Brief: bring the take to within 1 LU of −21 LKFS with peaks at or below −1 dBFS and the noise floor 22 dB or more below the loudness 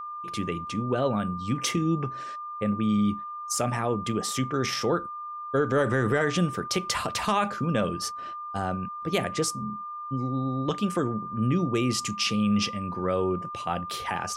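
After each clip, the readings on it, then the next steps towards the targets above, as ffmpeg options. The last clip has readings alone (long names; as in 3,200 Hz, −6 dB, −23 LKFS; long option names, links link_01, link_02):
interfering tone 1,200 Hz; level of the tone −34 dBFS; integrated loudness −28.0 LKFS; sample peak −12.0 dBFS; target loudness −21.0 LKFS
→ -af "bandreject=frequency=1200:width=30"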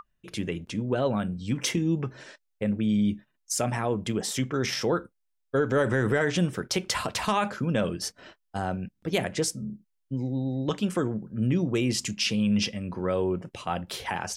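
interfering tone none found; integrated loudness −28.0 LKFS; sample peak −12.5 dBFS; target loudness −21.0 LKFS
→ -af "volume=7dB"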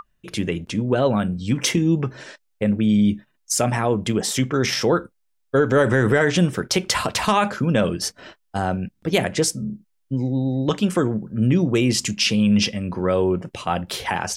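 integrated loudness −21.0 LKFS; sample peak −5.5 dBFS; background noise floor −69 dBFS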